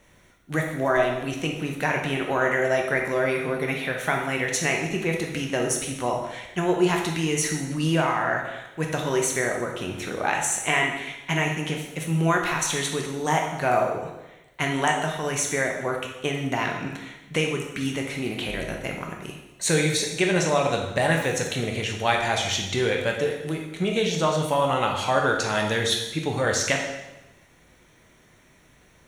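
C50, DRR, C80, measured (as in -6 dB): 4.0 dB, 0.5 dB, 7.0 dB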